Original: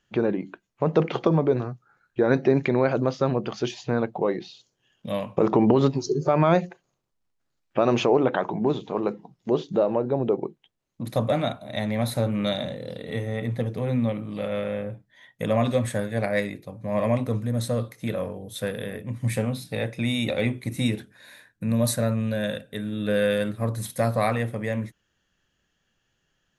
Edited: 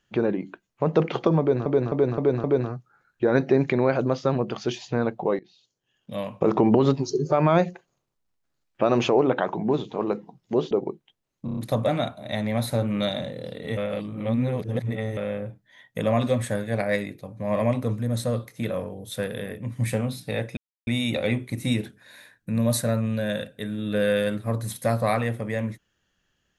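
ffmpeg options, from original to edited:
-filter_complex "[0:a]asplit=14[a][b][c][d][e][f][g][h][i][j][k][l][m][n];[a]atrim=end=1.662[o];[b]atrim=start=1.398:end=1.662[p];[c]atrim=start=1.398:end=1.662[q];[d]atrim=start=1.398:end=1.662[r];[e]atrim=start=1.398:end=4.35,asetpts=PTS-STARTPTS,afade=t=out:st=2.948:d=0.004:c=hsin:silence=0.0841395[s];[f]atrim=start=4.35:end=9.672,asetpts=PTS-STARTPTS,afade=t=in:d=1.11:silence=0.0841395[t];[g]atrim=start=10.268:end=11.042[u];[h]atrim=start=11.008:end=11.042[v];[i]atrim=start=11.008:end=11.042[w];[j]atrim=start=11.008:end=11.042[x];[k]atrim=start=11.008:end=13.212[y];[l]atrim=start=13.208:end=14.612,asetpts=PTS-STARTPTS,areverse[z];[m]atrim=start=14.608:end=20.01,asetpts=PTS-STARTPTS,afade=t=out:st=5.398:d=0.004:c=hsin,apad=pad_dur=0.3[aa];[n]atrim=start=20.01,asetpts=PTS-STARTPTS,afade=t=in:d=0.004:c=hsin[ab];[o][p]acrossfade=d=0.004:c1=hsin:c2=hsin[ac];[ac][q]acrossfade=d=0.004:c1=hsin:c2=hsin[ad];[ad][r]acrossfade=d=0.004:c1=hsin:c2=hsin[ae];[s][t]concat=n=2:v=0:a=1[af];[ae][af]acrossfade=d=0.004:c1=hsin:c2=hsin[ag];[ag][u]acrossfade=d=0.004:c1=hsin:c2=hsin[ah];[ah][v]acrossfade=d=0.004:c1=hsin:c2=hsin[ai];[ai][w]acrossfade=d=0.004:c1=hsin:c2=hsin[aj];[aj][x]acrossfade=d=0.004:c1=hsin:c2=hsin[ak];[ak][y]acrossfade=d=0.004:c1=hsin:c2=hsin[al];[al][z]acrossfade=d=0.004:c1=hsin:c2=hsin[am];[aa][ab]concat=n=2:v=0:a=1[an];[am][an]acrossfade=d=0.004:c1=hsin:c2=hsin"

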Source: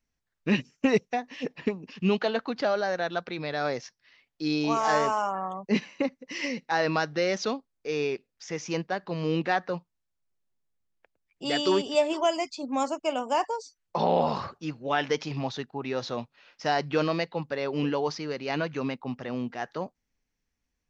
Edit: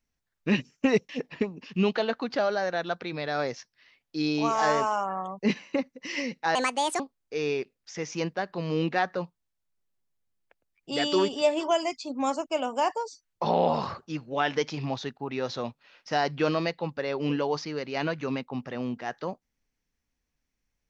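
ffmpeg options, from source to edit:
-filter_complex "[0:a]asplit=4[a][b][c][d];[a]atrim=end=1.092[e];[b]atrim=start=1.348:end=6.814[f];[c]atrim=start=6.81:end=7.53,asetpts=PTS-STARTPTS,asetrate=71001,aresample=44100[g];[d]atrim=start=7.526[h];[e][f]acrossfade=d=0.004:c1=hsin:c2=hsin[i];[i][g]acrossfade=d=0.004:c1=hsin:c2=hsin[j];[j][h]acrossfade=d=0.004:c1=hsin:c2=hsin"

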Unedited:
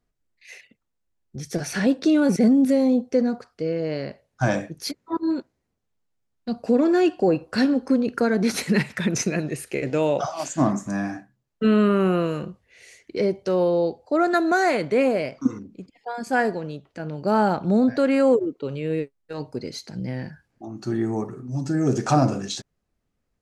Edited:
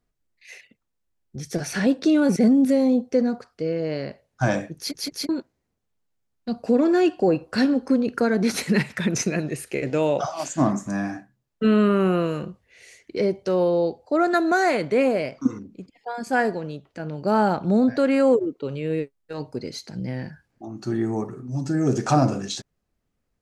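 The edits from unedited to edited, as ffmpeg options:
-filter_complex "[0:a]asplit=4[a][b][c][d];[a]atrim=end=4.952[e];[b]atrim=start=4.778:end=4.952[f];[c]atrim=start=4.778:end=4.952[g];[d]atrim=start=5.288[h];[e][f]acrossfade=d=0.004:c1=hsin:c2=hsin[i];[i][g]acrossfade=d=0.004:c1=hsin:c2=hsin[j];[j][h]acrossfade=d=0.004:c1=hsin:c2=hsin"

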